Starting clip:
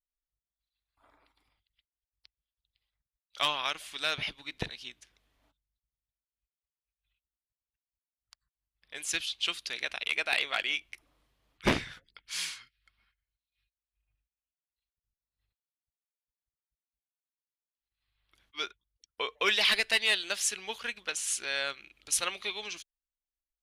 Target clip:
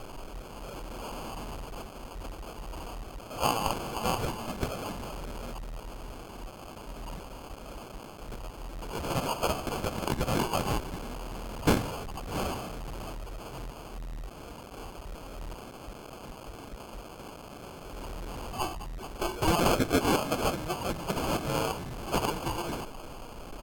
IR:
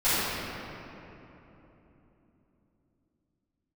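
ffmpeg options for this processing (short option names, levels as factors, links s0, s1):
-af "aeval=exprs='val(0)+0.5*0.0211*sgn(val(0))':c=same,lowshelf=f=120:g=2.5,bandreject=f=163.8:t=h:w=4,bandreject=f=327.6:t=h:w=4,bandreject=f=491.4:t=h:w=4,bandreject=f=655.2:t=h:w=4,bandreject=f=819:t=h:w=4,bandreject=f=982.8:t=h:w=4,bandreject=f=1146.6:t=h:w=4,bandreject=f=1310.4:t=h:w=4,bandreject=f=1474.2:t=h:w=4,bandreject=f=1638:t=h:w=4,bandreject=f=1801.8:t=h:w=4,bandreject=f=1965.6:t=h:w=4,bandreject=f=2129.4:t=h:w=4,bandreject=f=2293.2:t=h:w=4,bandreject=f=2457:t=h:w=4,bandreject=f=2620.8:t=h:w=4,bandreject=f=2784.6:t=h:w=4,bandreject=f=2948.4:t=h:w=4,bandreject=f=3112.2:t=h:w=4,bandreject=f=3276:t=h:w=4,bandreject=f=3439.8:t=h:w=4,bandreject=f=3603.6:t=h:w=4,bandreject=f=3767.4:t=h:w=4,bandreject=f=3931.2:t=h:w=4,bandreject=f=4095:t=h:w=4,bandreject=f=4258.8:t=h:w=4,bandreject=f=4422.6:t=h:w=4,bandreject=f=4586.4:t=h:w=4,bandreject=f=4750.2:t=h:w=4,bandreject=f=4914:t=h:w=4,bandreject=f=5077.8:t=h:w=4,bandreject=f=5241.6:t=h:w=4,bandreject=f=5405.4:t=h:w=4,acrusher=samples=19:mix=1:aa=0.000001,asetrate=36028,aresample=44100,atempo=1.22405,volume=1.12"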